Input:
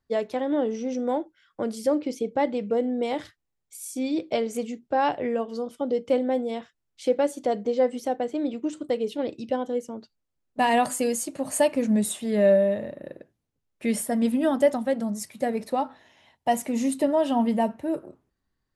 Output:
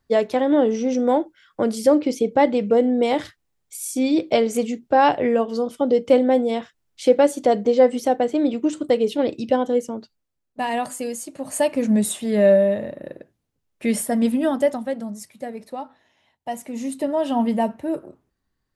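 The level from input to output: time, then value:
0:09.86 +7.5 dB
0:10.60 −3 dB
0:11.25 −3 dB
0:11.90 +4 dB
0:14.23 +4 dB
0:15.53 −6 dB
0:16.52 −6 dB
0:17.41 +2.5 dB

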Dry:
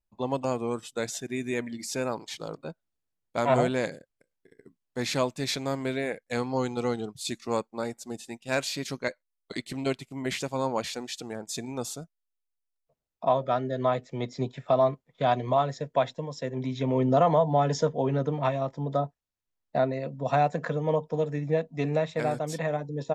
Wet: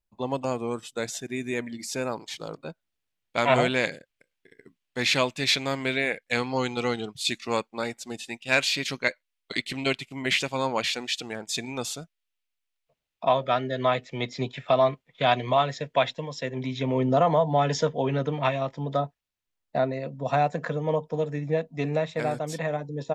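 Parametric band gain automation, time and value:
parametric band 2,700 Hz 1.6 octaves
0:02.34 +2.5 dB
0:03.40 +12.5 dB
0:16.23 +12.5 dB
0:17.28 +2.5 dB
0:17.69 +10 dB
0:18.95 +10 dB
0:19.79 +2.5 dB

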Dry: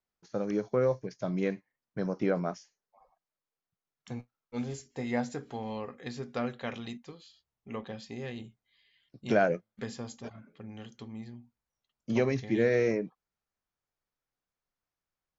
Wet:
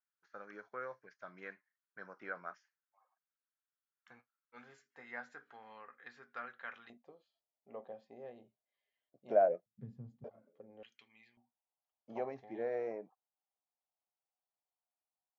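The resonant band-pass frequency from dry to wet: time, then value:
resonant band-pass, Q 3.7
1,500 Hz
from 0:06.90 630 Hz
from 0:09.66 140 Hz
from 0:10.24 530 Hz
from 0:10.83 2,400 Hz
from 0:11.37 760 Hz

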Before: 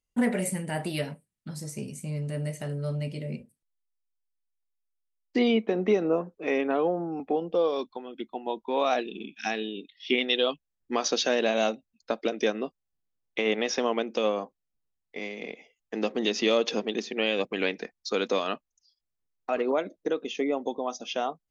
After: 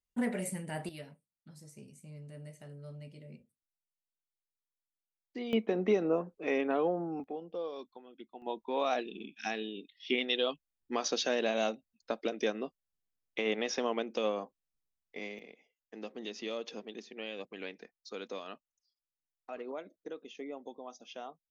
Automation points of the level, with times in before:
−7.5 dB
from 0:00.89 −16 dB
from 0:05.53 −4.5 dB
from 0:07.24 −13.5 dB
from 0:08.42 −6 dB
from 0:15.39 −15 dB

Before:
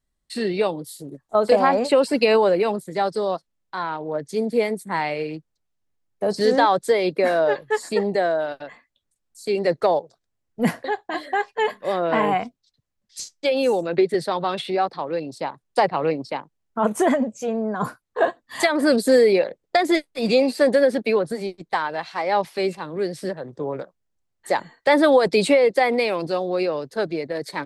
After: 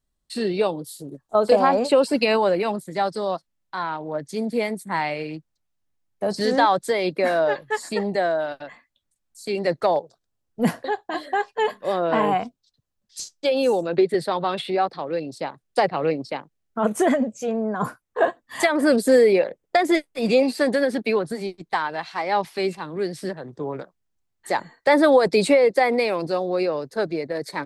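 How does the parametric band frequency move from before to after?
parametric band −5.5 dB 0.42 octaves
2,000 Hz
from 0:02.16 440 Hz
from 0:09.96 2,100 Hz
from 0:14.03 6,000 Hz
from 0:14.90 960 Hz
from 0:17.51 4,200 Hz
from 0:20.43 540 Hz
from 0:24.55 3,100 Hz

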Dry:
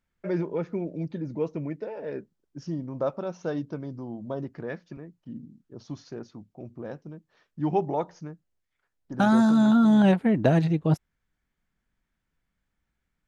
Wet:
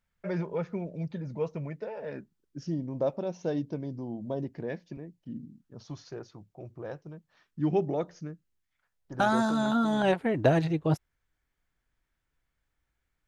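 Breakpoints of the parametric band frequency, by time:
parametric band −12.5 dB 0.51 octaves
0:02.02 310 Hz
0:02.79 1,300 Hz
0:05.17 1,300 Hz
0:05.91 240 Hz
0:07.11 240 Hz
0:07.70 900 Hz
0:08.28 900 Hz
0:09.23 200 Hz

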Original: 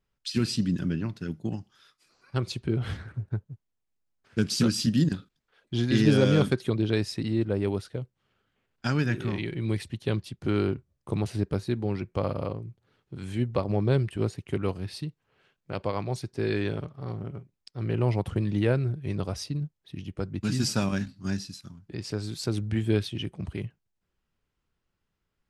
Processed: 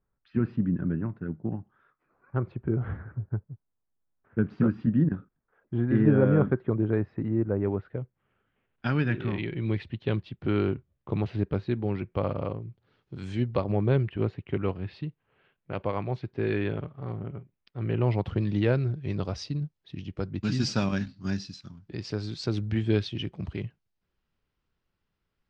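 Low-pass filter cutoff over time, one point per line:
low-pass filter 24 dB per octave
0:07.48 1,600 Hz
0:08.86 3,400 Hz
0:12.56 3,400 Hz
0:13.25 7,200 Hz
0:13.77 3,100 Hz
0:17.81 3,100 Hz
0:18.47 5,500 Hz

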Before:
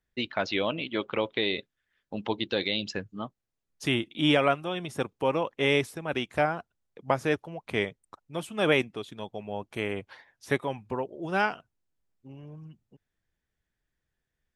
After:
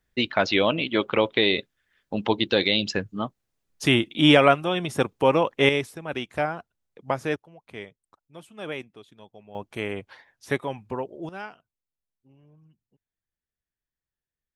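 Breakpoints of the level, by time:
+7 dB
from 0:05.69 −0.5 dB
from 0:07.36 −10.5 dB
from 0:09.55 +1 dB
from 0:11.29 −11.5 dB

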